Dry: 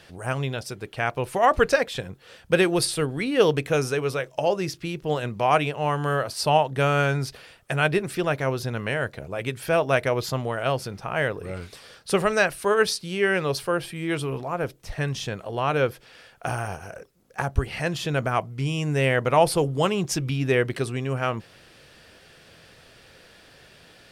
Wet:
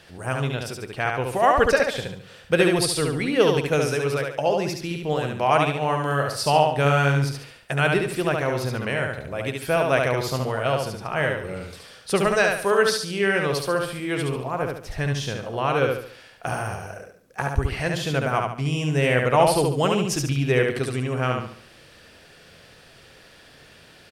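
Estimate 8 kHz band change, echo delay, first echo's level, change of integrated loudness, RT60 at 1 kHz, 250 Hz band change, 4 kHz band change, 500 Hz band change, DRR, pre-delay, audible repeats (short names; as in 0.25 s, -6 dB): +2.0 dB, 71 ms, -3.5 dB, +1.5 dB, none, +2.0 dB, +2.0 dB, +1.5 dB, none, none, 4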